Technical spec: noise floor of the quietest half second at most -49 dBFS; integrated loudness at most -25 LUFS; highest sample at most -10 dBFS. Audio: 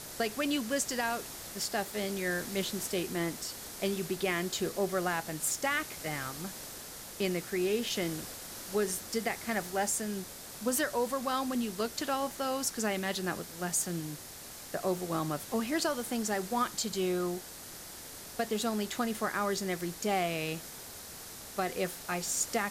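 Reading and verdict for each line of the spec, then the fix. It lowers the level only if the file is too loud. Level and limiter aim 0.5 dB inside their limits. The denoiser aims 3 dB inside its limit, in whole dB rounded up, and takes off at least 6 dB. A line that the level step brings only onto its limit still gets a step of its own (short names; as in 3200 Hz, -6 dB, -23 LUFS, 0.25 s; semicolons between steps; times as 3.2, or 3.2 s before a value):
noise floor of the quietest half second -47 dBFS: fail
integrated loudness -33.0 LUFS: OK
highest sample -18.0 dBFS: OK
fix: denoiser 6 dB, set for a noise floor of -47 dBFS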